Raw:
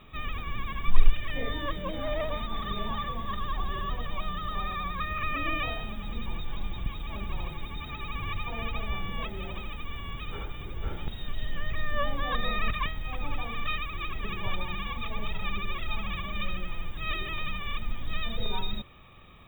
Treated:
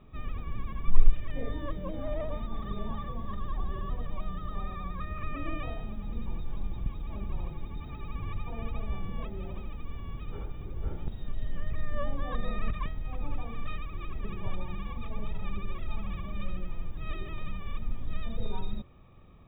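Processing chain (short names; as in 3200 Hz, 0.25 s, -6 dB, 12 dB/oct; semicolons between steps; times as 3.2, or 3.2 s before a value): tilt shelf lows +8.5 dB, about 1200 Hz; gain -8.5 dB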